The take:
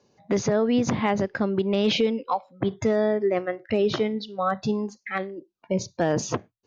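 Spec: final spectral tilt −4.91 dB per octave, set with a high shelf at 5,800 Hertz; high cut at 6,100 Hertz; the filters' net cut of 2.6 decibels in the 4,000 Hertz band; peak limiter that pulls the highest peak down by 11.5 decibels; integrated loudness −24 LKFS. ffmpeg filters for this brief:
ffmpeg -i in.wav -af "lowpass=6100,equalizer=frequency=4000:width_type=o:gain=-5,highshelf=frequency=5800:gain=6,volume=9.5dB,alimiter=limit=-14.5dB:level=0:latency=1" out.wav

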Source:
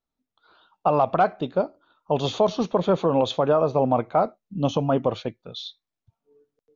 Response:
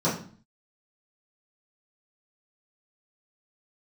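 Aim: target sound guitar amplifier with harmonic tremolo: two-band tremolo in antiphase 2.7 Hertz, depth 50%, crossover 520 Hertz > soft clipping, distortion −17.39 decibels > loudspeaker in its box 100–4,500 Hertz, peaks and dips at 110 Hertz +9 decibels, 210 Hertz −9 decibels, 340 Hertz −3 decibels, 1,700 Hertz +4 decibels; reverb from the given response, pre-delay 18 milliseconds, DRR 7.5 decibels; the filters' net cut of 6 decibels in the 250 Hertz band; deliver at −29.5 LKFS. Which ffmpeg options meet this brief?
-filter_complex "[0:a]equalizer=frequency=250:width_type=o:gain=-4,asplit=2[link_01][link_02];[1:a]atrim=start_sample=2205,adelay=18[link_03];[link_02][link_03]afir=irnorm=-1:irlink=0,volume=-20.5dB[link_04];[link_01][link_04]amix=inputs=2:normalize=0,acrossover=split=520[link_05][link_06];[link_05]aeval=exprs='val(0)*(1-0.5/2+0.5/2*cos(2*PI*2.7*n/s))':channel_layout=same[link_07];[link_06]aeval=exprs='val(0)*(1-0.5/2-0.5/2*cos(2*PI*2.7*n/s))':channel_layout=same[link_08];[link_07][link_08]amix=inputs=2:normalize=0,asoftclip=threshold=-15dB,highpass=100,equalizer=frequency=110:width_type=q:width=4:gain=9,equalizer=frequency=210:width_type=q:width=4:gain=-9,equalizer=frequency=340:width_type=q:width=4:gain=-3,equalizer=frequency=1700:width_type=q:width=4:gain=4,lowpass=frequency=4500:width=0.5412,lowpass=frequency=4500:width=1.3066,volume=-3dB"

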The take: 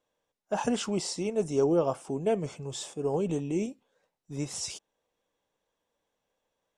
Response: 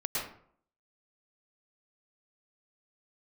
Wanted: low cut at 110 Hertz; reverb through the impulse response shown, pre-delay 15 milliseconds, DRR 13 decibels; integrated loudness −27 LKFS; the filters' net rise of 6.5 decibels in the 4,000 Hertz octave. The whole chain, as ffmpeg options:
-filter_complex "[0:a]highpass=110,equalizer=frequency=4000:width_type=o:gain=9,asplit=2[link_01][link_02];[1:a]atrim=start_sample=2205,adelay=15[link_03];[link_02][link_03]afir=irnorm=-1:irlink=0,volume=-19dB[link_04];[link_01][link_04]amix=inputs=2:normalize=0,volume=3dB"

